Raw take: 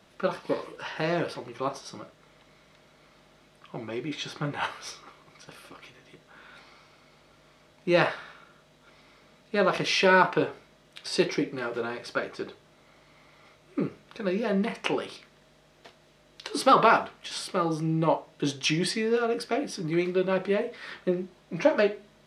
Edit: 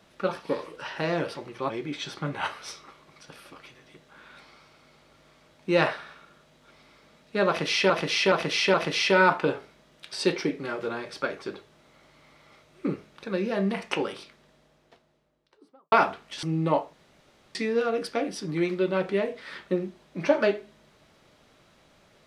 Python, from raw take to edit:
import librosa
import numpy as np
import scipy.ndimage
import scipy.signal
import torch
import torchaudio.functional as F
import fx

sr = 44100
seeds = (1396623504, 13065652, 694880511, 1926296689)

y = fx.studio_fade_out(x, sr, start_s=15.01, length_s=1.84)
y = fx.edit(y, sr, fx.cut(start_s=1.7, length_s=2.19),
    fx.repeat(start_s=9.67, length_s=0.42, count=4),
    fx.cut(start_s=17.36, length_s=0.43),
    fx.room_tone_fill(start_s=18.29, length_s=0.62), tone=tone)